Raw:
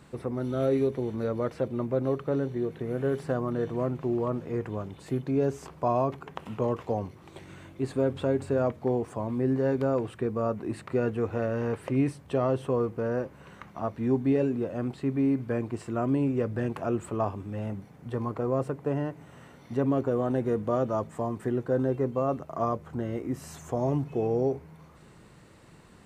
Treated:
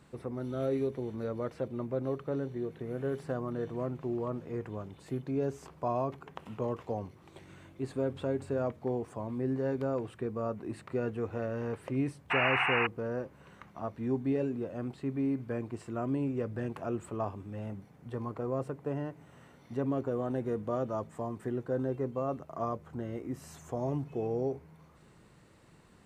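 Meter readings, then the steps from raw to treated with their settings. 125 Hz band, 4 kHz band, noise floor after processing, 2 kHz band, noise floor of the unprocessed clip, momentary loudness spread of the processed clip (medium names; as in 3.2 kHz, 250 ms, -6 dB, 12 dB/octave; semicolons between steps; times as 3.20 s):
-6.0 dB, no reading, -59 dBFS, +5.5 dB, -53 dBFS, 9 LU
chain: painted sound noise, 12.30–12.87 s, 680–2900 Hz -23 dBFS; trim -6 dB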